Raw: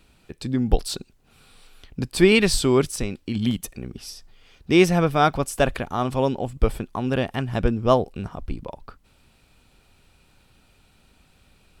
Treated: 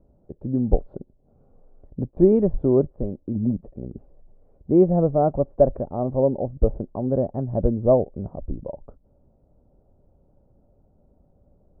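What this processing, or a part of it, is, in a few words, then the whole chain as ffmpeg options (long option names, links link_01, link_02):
under water: -filter_complex "[0:a]asplit=3[link_01][link_02][link_03];[link_01]afade=type=out:start_time=2.1:duration=0.02[link_04];[link_02]agate=range=-12dB:threshold=-28dB:ratio=16:detection=peak,afade=type=in:start_time=2.1:duration=0.02,afade=type=out:start_time=2.96:duration=0.02[link_05];[link_03]afade=type=in:start_time=2.96:duration=0.02[link_06];[link_04][link_05][link_06]amix=inputs=3:normalize=0,lowpass=frequency=690:width=0.5412,lowpass=frequency=690:width=1.3066,equalizer=frequency=580:width_type=o:width=0.26:gain=8.5"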